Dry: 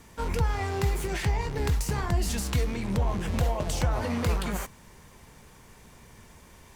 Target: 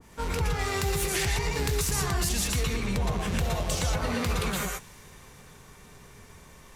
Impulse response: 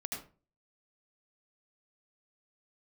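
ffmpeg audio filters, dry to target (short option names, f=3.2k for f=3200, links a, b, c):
-filter_complex "[1:a]atrim=start_sample=2205,afade=t=out:st=0.13:d=0.01,atrim=end_sample=6174,asetrate=27783,aresample=44100[a];[0:a][a]afir=irnorm=-1:irlink=0,asoftclip=type=tanh:threshold=-12.5dB,asettb=1/sr,asplit=3[b][c][d];[b]atrim=end=0.594[e];[c]atrim=start=0.59:end=2.29,asetpts=PTS-STARTPTS,afade=t=in:d=0.004:c=qsin,afade=t=out:st=1.696:d=0.004:c=qsin,highshelf=f=4.7k:g=7[f];[d]atrim=start=2.286[g];[e][f]acrossfade=d=0.004:c1=hsin:c2=qsin[h];[h][g]acrossfade=d=0.004:c1=qsin:c2=hsin,alimiter=limit=-19.5dB:level=0:latency=1:release=83,adynamicequalizer=threshold=0.00447:dfrequency=1600:dqfactor=0.7:tfrequency=1600:tqfactor=0.7:attack=5:release=100:ratio=0.375:range=2.5:mode=boostabove:tftype=highshelf"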